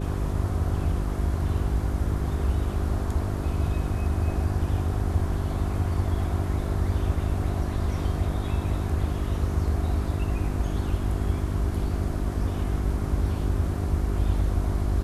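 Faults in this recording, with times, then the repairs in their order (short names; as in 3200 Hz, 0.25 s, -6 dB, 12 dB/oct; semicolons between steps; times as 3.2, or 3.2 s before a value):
hum 50 Hz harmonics 8 -30 dBFS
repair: de-hum 50 Hz, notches 8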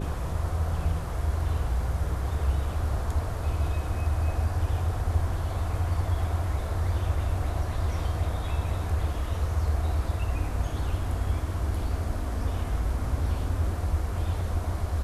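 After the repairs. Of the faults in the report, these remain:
none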